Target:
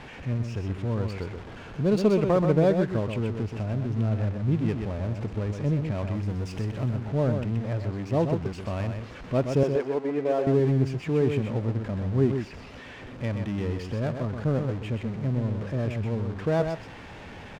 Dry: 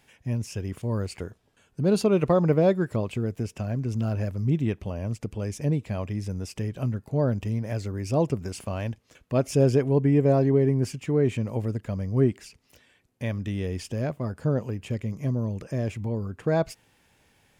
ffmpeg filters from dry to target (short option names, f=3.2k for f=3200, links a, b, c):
-filter_complex "[0:a]aeval=exprs='val(0)+0.5*0.0237*sgn(val(0))':c=same,asettb=1/sr,asplit=3[a][b][c];[a]atrim=end=6.154[d];[b]atrim=start=6.15:end=6.96,asetpts=PTS-STARTPTS,afade=t=in:d=0.004:c=qsin,afade=t=out:st=0.806:d=0.004:c=qsin,highshelf=f=8.6k:g=9[e];[c]atrim=start=6.956[f];[d][e]acrossfade=d=0.004:c1=hsin:c2=qsin[g];[g][f]acrossfade=d=0.004:c1=qsin:c2=hsin,asettb=1/sr,asplit=3[h][i][j];[h]atrim=end=9.634[k];[i]atrim=start=9.63:end=10.47,asetpts=PTS-STARTPTS,afade=t=in:d=0.004:c=qsin,afade=t=out:st=0.836:d=0.004:c=qsin,highpass=410[l];[j]atrim=start=10.466[m];[k][l]acrossfade=d=0.004:c1=hsin:c2=qsin[n];[n][m]acrossfade=d=0.004:c1=qsin:c2=hsin,adynamicsmooth=sensitivity=4:basefreq=1.7k,aecho=1:1:127:0.473,volume=-2dB"